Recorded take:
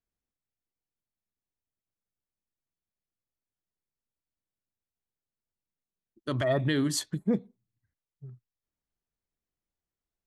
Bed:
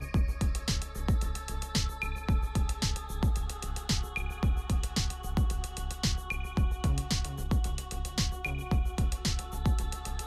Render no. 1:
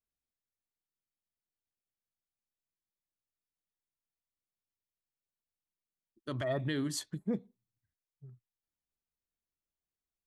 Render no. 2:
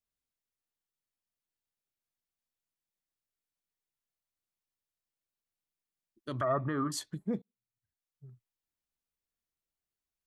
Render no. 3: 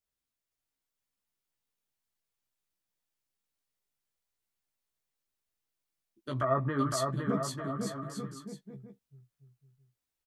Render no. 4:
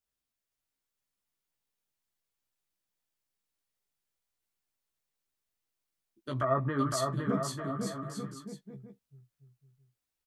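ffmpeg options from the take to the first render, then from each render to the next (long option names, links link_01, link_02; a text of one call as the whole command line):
ffmpeg -i in.wav -af "volume=-7dB" out.wav
ffmpeg -i in.wav -filter_complex "[0:a]asettb=1/sr,asplit=3[link_01][link_02][link_03];[link_01]atrim=end=6.414[link_04];[link_02]atrim=start=6.41:end=6.92,asetpts=PTS-STARTPTS,afade=type=in:duration=0.004:curve=qsin,afade=type=out:start_time=0.506:duration=0.004:curve=qsin,lowpass=frequency=1200:width_type=q:width=12[link_05];[link_03]atrim=start=6.916[link_06];[link_04][link_05]acrossfade=duration=0.004:curve1=hsin:curve2=qsin[link_07];[link_07][link_06]acrossfade=duration=0.004:curve1=qsin:curve2=hsin,asplit=2[link_08][link_09];[link_08]atrim=end=7.42,asetpts=PTS-STARTPTS,afade=type=out:start_time=7.416:duration=0.004:curve=hsin[link_10];[link_09]atrim=start=7.42,asetpts=PTS-STARTPTS,afade=type=in:duration=0.85[link_11];[link_10][link_11]concat=n=2:v=0:a=1" out.wav
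ffmpeg -i in.wav -filter_complex "[0:a]asplit=2[link_01][link_02];[link_02]adelay=15,volume=-4dB[link_03];[link_01][link_03]amix=inputs=2:normalize=0,aecho=1:1:510|892.5|1179|1395|1556:0.631|0.398|0.251|0.158|0.1" out.wav
ffmpeg -i in.wav -filter_complex "[0:a]asettb=1/sr,asplit=3[link_01][link_02][link_03];[link_01]atrim=end=6.984[link_04];[link_02]atrim=start=6.98:end=8.35,asetpts=PTS-STARTPTS,afade=type=in:duration=0.004:curve=qsin,afade=type=out:start_time=1.366:duration=0.004:curve=qsin,asplit=2[link_05][link_06];[link_06]adelay=41,volume=-12dB[link_07];[link_05][link_07]amix=inputs=2:normalize=0,atrim=end_sample=60417[link_08];[link_03]atrim=start=8.346[link_09];[link_04][link_08]acrossfade=duration=0.004:curve1=hsin:curve2=qsin[link_10];[link_10][link_09]acrossfade=duration=0.004:curve1=qsin:curve2=hsin" out.wav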